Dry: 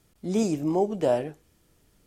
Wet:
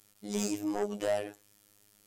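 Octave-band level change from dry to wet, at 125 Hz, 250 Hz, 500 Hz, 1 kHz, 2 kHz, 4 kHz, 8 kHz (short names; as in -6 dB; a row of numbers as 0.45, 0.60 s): -12.0, -8.0, -7.5, -8.0, +0.5, 0.0, +2.0 dB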